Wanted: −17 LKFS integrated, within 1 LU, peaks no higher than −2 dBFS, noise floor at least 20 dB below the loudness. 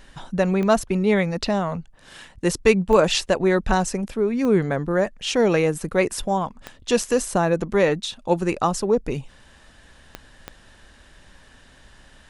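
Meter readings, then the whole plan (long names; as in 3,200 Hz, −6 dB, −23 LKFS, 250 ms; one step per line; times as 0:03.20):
number of clicks 6; integrated loudness −21.5 LKFS; sample peak −2.5 dBFS; target loudness −17.0 LKFS
→ click removal
level +4.5 dB
brickwall limiter −2 dBFS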